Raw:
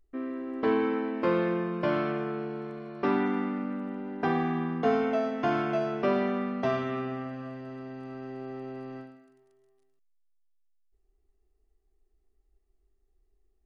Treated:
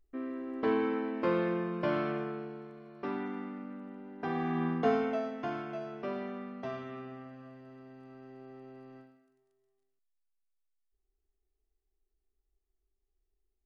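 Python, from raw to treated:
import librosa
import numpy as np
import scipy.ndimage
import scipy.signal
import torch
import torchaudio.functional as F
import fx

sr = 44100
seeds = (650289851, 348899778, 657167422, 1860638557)

y = fx.gain(x, sr, db=fx.line((2.18, -3.5), (2.71, -10.0), (4.17, -10.0), (4.67, 0.0), (5.65, -11.0)))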